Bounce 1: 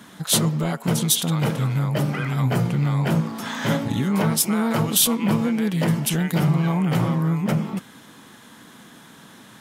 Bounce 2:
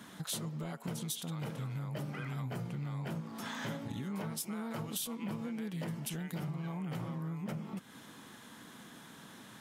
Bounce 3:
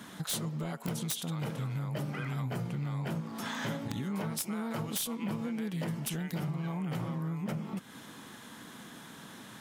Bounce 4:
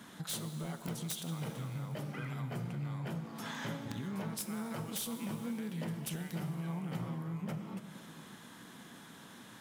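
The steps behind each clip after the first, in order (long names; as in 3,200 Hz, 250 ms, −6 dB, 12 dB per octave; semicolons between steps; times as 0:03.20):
downward compressor 4 to 1, threshold −32 dBFS, peak gain reduction 15.5 dB; level −6.5 dB
wrap-around overflow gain 28 dB; level +4 dB
dense smooth reverb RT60 3.7 s, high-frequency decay 0.85×, DRR 8.5 dB; level −5 dB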